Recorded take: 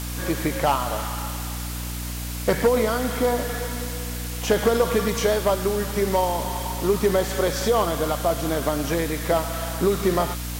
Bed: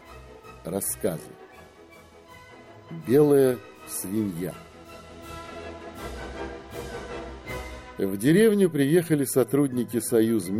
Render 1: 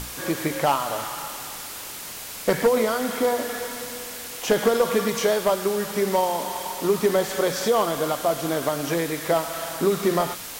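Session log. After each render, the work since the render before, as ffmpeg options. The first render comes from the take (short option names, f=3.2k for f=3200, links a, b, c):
-af "bandreject=f=60:t=h:w=6,bandreject=f=120:t=h:w=6,bandreject=f=180:t=h:w=6,bandreject=f=240:t=h:w=6,bandreject=f=300:t=h:w=6"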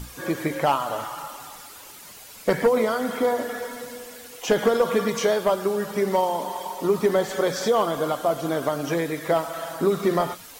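-af "afftdn=nr=10:nf=-36"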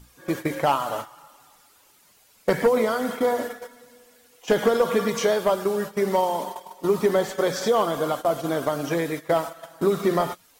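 -af "agate=range=-14dB:threshold=-29dB:ratio=16:detection=peak"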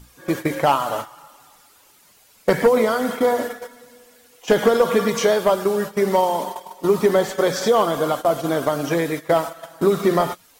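-af "volume=4dB"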